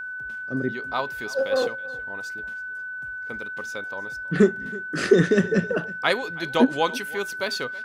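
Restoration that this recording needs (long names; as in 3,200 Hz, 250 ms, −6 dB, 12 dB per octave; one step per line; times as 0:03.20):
notch filter 1,500 Hz, Q 30
echo removal 324 ms −20 dB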